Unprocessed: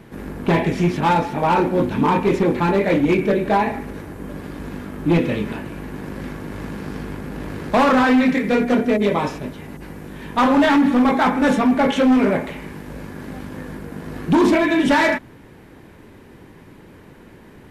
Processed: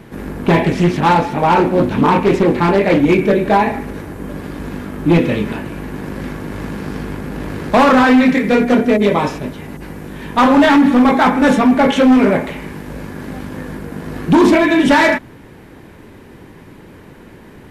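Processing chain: 0.65–3 Doppler distortion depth 0.26 ms; gain +5 dB

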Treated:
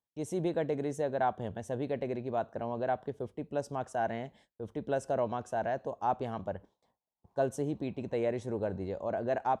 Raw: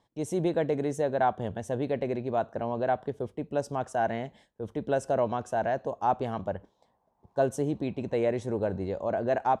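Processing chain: gate with hold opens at -48 dBFS; gain -4.5 dB

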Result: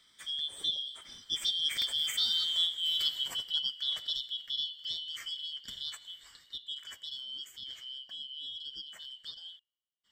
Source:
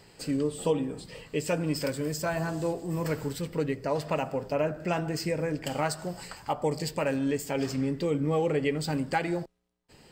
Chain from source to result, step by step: four-band scrambler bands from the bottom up 3412; Doppler pass-by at 2.5, 11 m/s, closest 9.9 m

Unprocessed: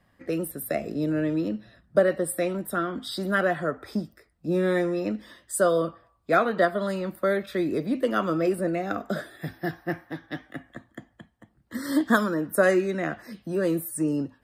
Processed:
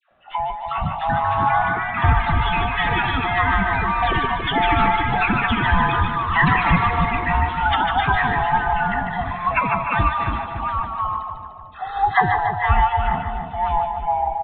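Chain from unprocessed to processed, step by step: band-swap scrambler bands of 500 Hz; echoes that change speed 0.453 s, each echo +5 st, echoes 3; on a send: split-band echo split 780 Hz, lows 0.28 s, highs 0.149 s, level -5.5 dB; on the sum: downsampling 8000 Hz; 12.36–13 bell 280 Hz -13 dB 0.64 oct; dispersion lows, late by 0.11 s, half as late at 980 Hz; gain +4 dB

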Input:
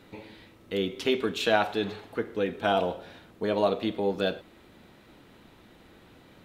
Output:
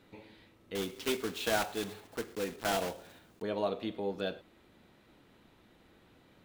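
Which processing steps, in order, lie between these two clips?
0.75–3.44 block floating point 3-bit; gain -8 dB

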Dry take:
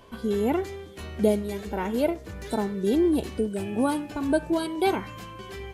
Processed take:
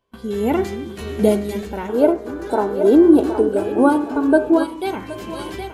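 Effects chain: split-band echo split 320 Hz, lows 0.311 s, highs 0.768 s, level -10.5 dB; spectral gain 1.89–4.64, 250–1700 Hz +12 dB; de-hum 87.99 Hz, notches 30; AGC gain up to 12 dB; gate with hold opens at -29 dBFS; gain -1 dB

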